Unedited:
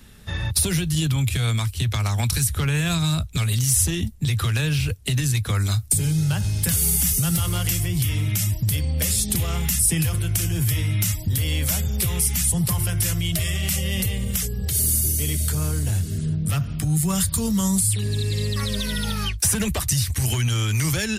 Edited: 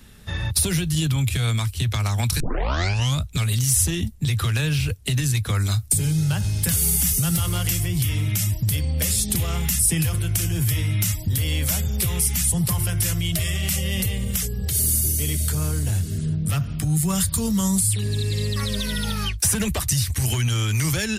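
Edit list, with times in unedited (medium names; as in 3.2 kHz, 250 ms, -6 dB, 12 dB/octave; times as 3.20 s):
2.40 s: tape start 0.82 s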